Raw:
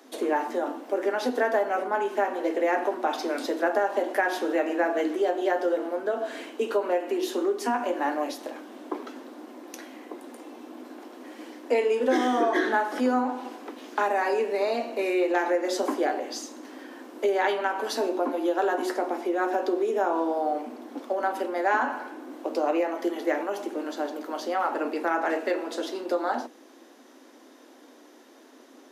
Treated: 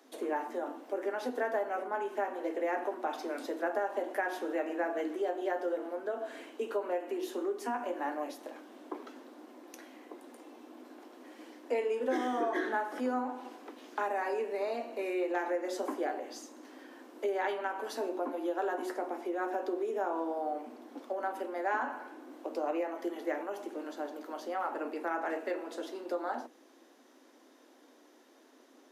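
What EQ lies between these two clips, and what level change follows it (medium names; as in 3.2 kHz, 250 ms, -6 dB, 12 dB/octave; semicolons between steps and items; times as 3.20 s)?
high-pass 200 Hz; dynamic bell 4.5 kHz, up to -5 dB, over -48 dBFS, Q 1; -8.0 dB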